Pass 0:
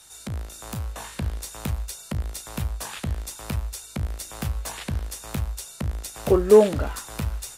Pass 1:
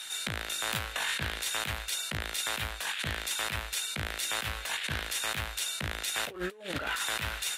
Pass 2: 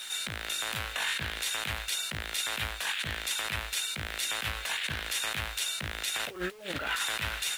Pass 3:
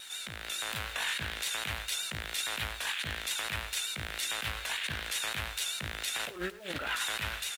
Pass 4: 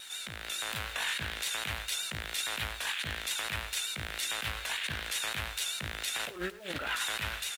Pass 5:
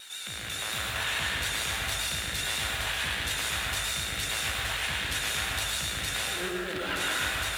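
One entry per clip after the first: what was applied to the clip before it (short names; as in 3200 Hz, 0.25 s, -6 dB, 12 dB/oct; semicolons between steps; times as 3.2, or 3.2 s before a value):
HPF 500 Hz 6 dB/oct; band shelf 2400 Hz +10.5 dB; negative-ratio compressor -35 dBFS, ratio -1
dynamic EQ 2600 Hz, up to +3 dB, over -44 dBFS, Q 0.8; limiter -20 dBFS, peak gain reduction 7 dB; bit-crush 9-bit
vibrato 7 Hz 51 cents; AGC gain up to 4 dB; echo 0.104 s -18 dB; gain -6 dB
nothing audible
reverb RT60 1.8 s, pre-delay 93 ms, DRR -3.5 dB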